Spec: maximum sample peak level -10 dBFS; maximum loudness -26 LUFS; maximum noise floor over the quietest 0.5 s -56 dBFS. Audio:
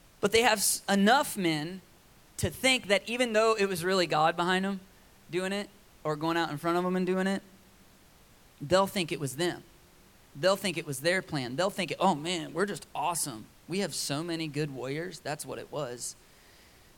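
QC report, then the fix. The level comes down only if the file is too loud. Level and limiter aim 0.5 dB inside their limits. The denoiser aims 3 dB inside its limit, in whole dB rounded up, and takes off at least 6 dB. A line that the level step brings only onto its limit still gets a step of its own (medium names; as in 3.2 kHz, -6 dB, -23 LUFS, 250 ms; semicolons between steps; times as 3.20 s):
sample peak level -8.0 dBFS: fail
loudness -29.0 LUFS: pass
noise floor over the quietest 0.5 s -58 dBFS: pass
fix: peak limiter -10.5 dBFS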